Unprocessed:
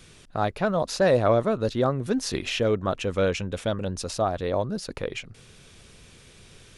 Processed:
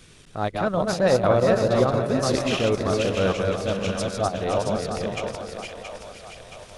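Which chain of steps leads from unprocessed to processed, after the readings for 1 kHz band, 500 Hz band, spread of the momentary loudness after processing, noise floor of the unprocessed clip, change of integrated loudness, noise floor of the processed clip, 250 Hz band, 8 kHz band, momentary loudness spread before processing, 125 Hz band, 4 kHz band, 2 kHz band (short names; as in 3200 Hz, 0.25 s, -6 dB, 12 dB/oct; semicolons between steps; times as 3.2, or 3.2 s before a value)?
+2.5 dB, +3.0 dB, 18 LU, -52 dBFS, +2.5 dB, -48 dBFS, +3.0 dB, +2.0 dB, 11 LU, +2.5 dB, +2.5 dB, +2.5 dB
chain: regenerating reverse delay 0.258 s, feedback 48%, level -3 dB; transient shaper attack -6 dB, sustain -10 dB; split-band echo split 560 Hz, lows 0.187 s, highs 0.674 s, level -7.5 dB; gain +1.5 dB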